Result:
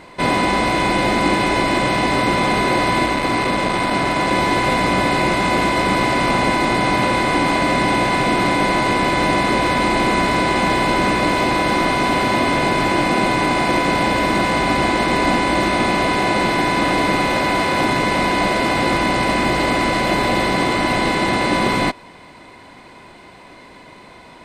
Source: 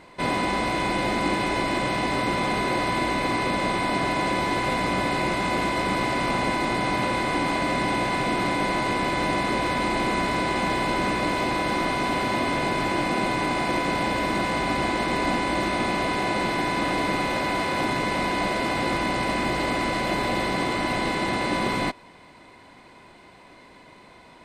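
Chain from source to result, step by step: 3.06–4.31 s: transformer saturation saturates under 540 Hz; trim +7.5 dB

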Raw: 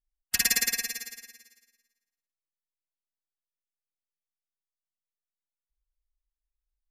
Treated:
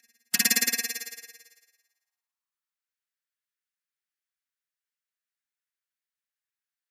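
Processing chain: reverse echo 1085 ms -21 dB; high-pass sweep 160 Hz -> 1.6 kHz, 0.11–2.95 s; trim +1.5 dB

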